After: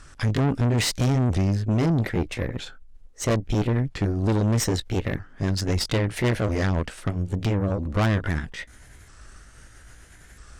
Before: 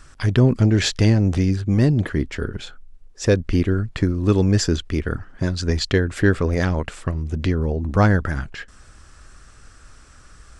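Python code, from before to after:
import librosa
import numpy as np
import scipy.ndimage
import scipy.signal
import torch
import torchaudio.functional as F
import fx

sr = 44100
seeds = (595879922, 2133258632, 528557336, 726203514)

y = fx.pitch_ramps(x, sr, semitones=4.0, every_ms=1297)
y = fx.tube_stage(y, sr, drive_db=21.0, bias=0.6)
y = y * 10.0 ** (3.0 / 20.0)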